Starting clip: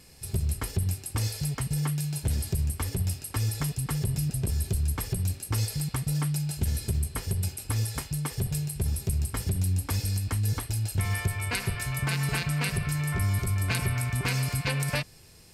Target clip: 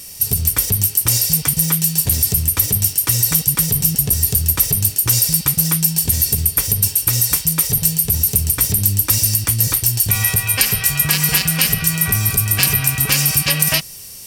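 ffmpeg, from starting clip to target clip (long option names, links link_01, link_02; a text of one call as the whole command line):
ffmpeg -i in.wav -af "crystalizer=i=5.5:c=0,asetrate=48000,aresample=44100,acontrast=81,volume=-1dB" out.wav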